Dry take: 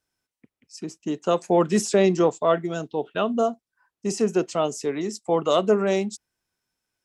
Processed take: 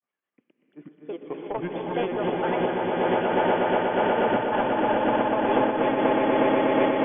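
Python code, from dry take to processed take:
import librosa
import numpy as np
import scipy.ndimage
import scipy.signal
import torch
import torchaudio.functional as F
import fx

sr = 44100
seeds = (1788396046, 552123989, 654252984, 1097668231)

y = fx.wiener(x, sr, points=9)
y = scipy.signal.sosfilt(scipy.signal.butter(2, 180.0, 'highpass', fs=sr, output='sos'), y)
y = fx.low_shelf(y, sr, hz=330.0, db=-8.0)
y = fx.over_compress(y, sr, threshold_db=-22.0, ratio=-1.0)
y = fx.granulator(y, sr, seeds[0], grain_ms=100.0, per_s=20.0, spray_ms=100.0, spread_st=7)
y = 10.0 ** (-20.5 / 20.0) * np.tanh(y / 10.0 ** (-20.5 / 20.0))
y = fx.brickwall_lowpass(y, sr, high_hz=3500.0)
y = fx.echo_swell(y, sr, ms=121, loudest=8, wet_db=-4)
y = fx.rev_gated(y, sr, seeds[1], gate_ms=380, shape='rising', drr_db=3.5)
y = fx.am_noise(y, sr, seeds[2], hz=5.7, depth_pct=55)
y = F.gain(torch.from_numpy(y), 1.5).numpy()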